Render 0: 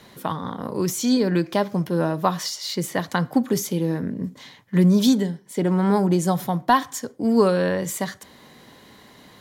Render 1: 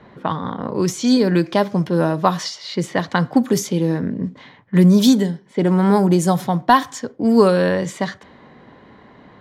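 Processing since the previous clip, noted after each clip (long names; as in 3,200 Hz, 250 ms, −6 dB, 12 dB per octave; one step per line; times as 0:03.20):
low-pass that shuts in the quiet parts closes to 1,600 Hz, open at −16 dBFS
level +4.5 dB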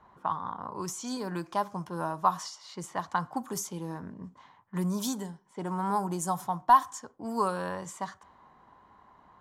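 octave-band graphic EQ 125/250/500/1,000/2,000/4,000/8,000 Hz −9/−9/−11/+9/−10/−9/+4 dB
level −8.5 dB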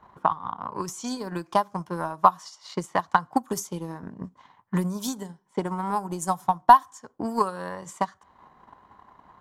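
in parallel at −1 dB: downward compressor, threshold −37 dBFS, peak gain reduction 20.5 dB
on the sum: transient designer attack +11 dB, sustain −6 dB
level −2.5 dB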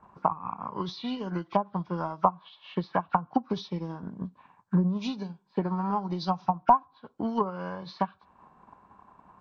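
hearing-aid frequency compression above 1,300 Hz 1.5 to 1
parametric band 190 Hz +5 dB 0.56 octaves
treble cut that deepens with the level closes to 820 Hz, closed at −17.5 dBFS
level −2.5 dB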